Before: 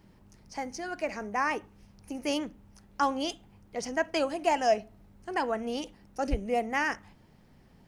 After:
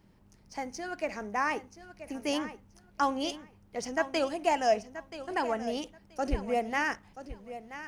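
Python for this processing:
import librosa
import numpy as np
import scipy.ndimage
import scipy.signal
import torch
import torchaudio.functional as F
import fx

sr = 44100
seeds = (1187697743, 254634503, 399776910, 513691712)

p1 = np.sign(x) * np.maximum(np.abs(x) - 10.0 ** (-50.0 / 20.0), 0.0)
p2 = x + F.gain(torch.from_numpy(p1), -7.0).numpy()
p3 = fx.echo_feedback(p2, sr, ms=980, feedback_pct=17, wet_db=-13)
y = F.gain(torch.from_numpy(p3), -4.0).numpy()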